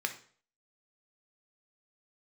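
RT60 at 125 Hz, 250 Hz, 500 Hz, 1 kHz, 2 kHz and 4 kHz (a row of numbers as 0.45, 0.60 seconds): 0.50, 0.45, 0.50, 0.45, 0.45, 0.45 seconds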